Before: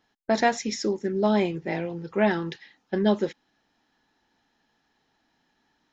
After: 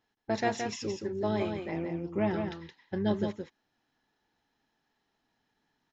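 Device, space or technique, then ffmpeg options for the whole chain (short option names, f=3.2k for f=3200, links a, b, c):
octave pedal: -filter_complex "[0:a]asettb=1/sr,asplit=3[a][b][c];[a]atrim=end=1.714[d];[b]atrim=start=1.71:end=2.34,asetpts=PTS-STARTPTS,afade=t=in:d=0.004:c=qsin,afade=t=out:st=0.626:d=0.004:c=qsin,equalizer=f=315:t=o:w=0.33:g=10,equalizer=f=1.6k:t=o:w=0.33:g=-8,equalizer=f=4k:t=o:w=0.33:g=-12[e];[c]atrim=start=2.336[f];[d][e]acrossfade=d=0.004:c1=hsin:c2=qsin[g];[g][f]acrossfade=d=0.004:c1=qsin:c2=hsin,asplit=2[h][i];[i]asetrate=22050,aresample=44100,atempo=2,volume=-8dB[j];[h][j]amix=inputs=2:normalize=0,aecho=1:1:170:0.501,volume=-8.5dB"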